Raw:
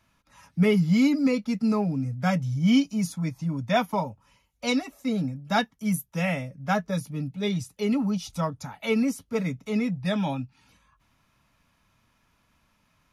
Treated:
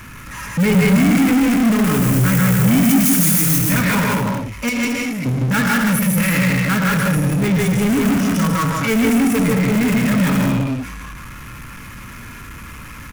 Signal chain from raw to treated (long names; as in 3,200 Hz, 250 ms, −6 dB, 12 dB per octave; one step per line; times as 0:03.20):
0:01.84–0:03.42: spike at every zero crossing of −17.5 dBFS
0:04.69–0:05.26: guitar amp tone stack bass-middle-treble 5-5-5
reverb whose tail is shaped and stops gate 200 ms rising, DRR 1.5 dB
in parallel at −7 dB: wrap-around overflow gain 20.5 dB
on the sum: phaser with its sweep stopped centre 1,700 Hz, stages 4
on a send: loudspeakers that aren't time-aligned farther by 53 metres −2 dB, 77 metres −9 dB
on the sum: power curve on the samples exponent 0.5